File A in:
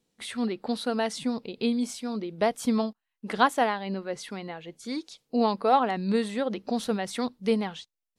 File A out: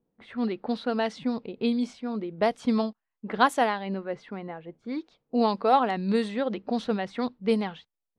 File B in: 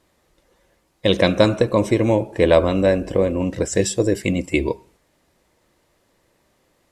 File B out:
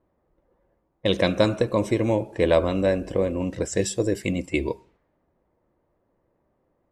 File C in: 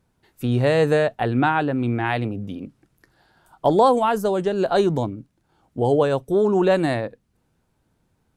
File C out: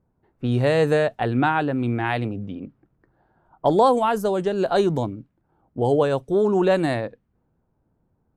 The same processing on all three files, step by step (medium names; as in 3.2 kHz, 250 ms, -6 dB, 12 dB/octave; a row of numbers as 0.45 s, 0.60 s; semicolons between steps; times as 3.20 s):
level-controlled noise filter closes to 960 Hz, open at -18.5 dBFS; peak normalisation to -6 dBFS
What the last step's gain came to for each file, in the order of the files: +0.5 dB, -5.0 dB, -1.0 dB